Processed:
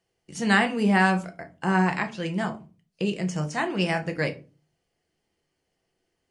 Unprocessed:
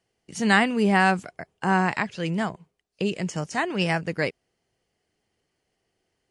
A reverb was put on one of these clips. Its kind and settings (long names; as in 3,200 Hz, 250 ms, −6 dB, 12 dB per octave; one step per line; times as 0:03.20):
rectangular room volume 140 cubic metres, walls furnished, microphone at 0.79 metres
level −2.5 dB